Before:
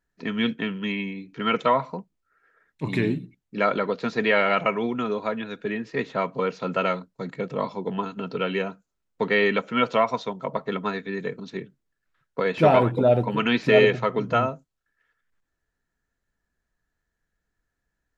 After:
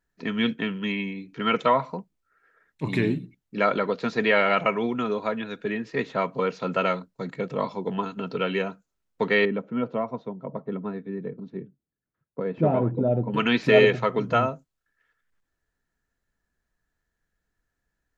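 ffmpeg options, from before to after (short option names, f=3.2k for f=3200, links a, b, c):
-filter_complex "[0:a]asettb=1/sr,asplit=3[a][b][c];[a]atrim=end=9.454[d];[b]atrim=start=9.45:end=13.34,asetpts=PTS-STARTPTS,afade=t=in:d=0.004:c=qsin,afade=t=out:st=3.886:d=0.004:c=qsin,bandpass=f=180:t=q:w=0.6[e];[c]atrim=start=13.336[f];[d][e]acrossfade=d=0.004:c1=hsin:c2=qsin[g];[g][f]acrossfade=d=0.004:c1=qsin:c2=hsin"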